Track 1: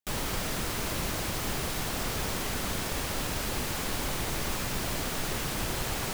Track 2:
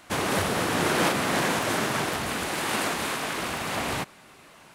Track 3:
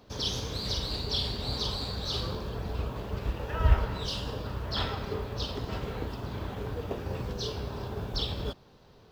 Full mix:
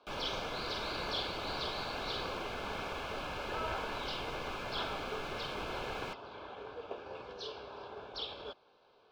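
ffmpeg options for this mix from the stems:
ffmpeg -i stem1.wav -i stem2.wav -i stem3.wav -filter_complex "[0:a]bass=frequency=250:gain=14,treble=frequency=4000:gain=-5,volume=-4.5dB[link_01];[1:a]acrusher=samples=17:mix=1:aa=0.000001:lfo=1:lforange=17:lforate=0.93,volume=-18dB[link_02];[2:a]lowpass=7700,volume=-4dB[link_03];[link_01][link_02][link_03]amix=inputs=3:normalize=0,asuperstop=centerf=1900:order=20:qfactor=6.5,acrossover=split=380 4500:gain=0.0708 1 0.1[link_04][link_05][link_06];[link_04][link_05][link_06]amix=inputs=3:normalize=0" out.wav

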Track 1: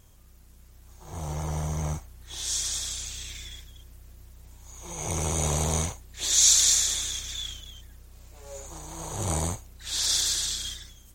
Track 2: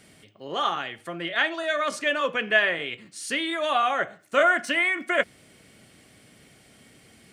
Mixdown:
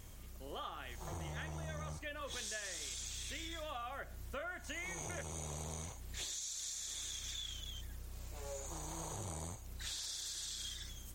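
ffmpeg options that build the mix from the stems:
ffmpeg -i stem1.wav -i stem2.wav -filter_complex "[0:a]acompressor=threshold=-33dB:ratio=6,volume=2dB[link_01];[1:a]volume=-12.5dB[link_02];[link_01][link_02]amix=inputs=2:normalize=0,acompressor=threshold=-42dB:ratio=5" out.wav

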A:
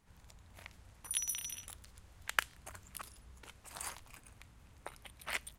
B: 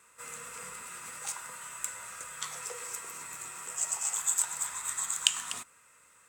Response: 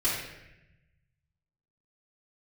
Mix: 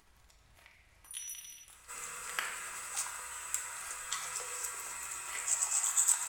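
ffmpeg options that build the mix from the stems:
-filter_complex "[0:a]aeval=exprs='0.422*(cos(1*acos(clip(val(0)/0.422,-1,1)))-cos(1*PI/2))+0.0596*(cos(3*acos(clip(val(0)/0.422,-1,1)))-cos(3*PI/2))':channel_layout=same,volume=-7.5dB,asplit=2[link_01][link_02];[link_02]volume=-5dB[link_03];[1:a]asubboost=boost=8.5:cutoff=59,adelay=1700,volume=-1.5dB,asplit=2[link_04][link_05];[link_05]volume=-13.5dB[link_06];[2:a]atrim=start_sample=2205[link_07];[link_03][link_06]amix=inputs=2:normalize=0[link_08];[link_08][link_07]afir=irnorm=-1:irlink=0[link_09];[link_01][link_04][link_09]amix=inputs=3:normalize=0,lowshelf=frequency=420:gain=-9,acompressor=mode=upward:threshold=-55dB:ratio=2.5"

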